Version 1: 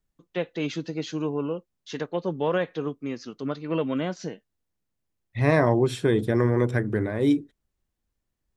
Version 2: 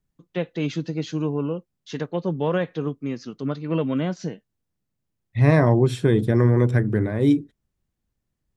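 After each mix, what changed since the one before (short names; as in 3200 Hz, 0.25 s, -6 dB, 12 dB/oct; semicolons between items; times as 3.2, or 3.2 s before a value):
master: add bell 140 Hz +7.5 dB 1.7 oct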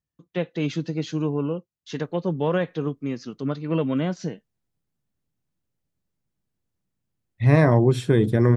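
second voice: entry +2.05 s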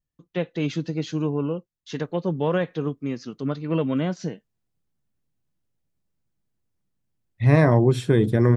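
first voice: remove HPF 59 Hz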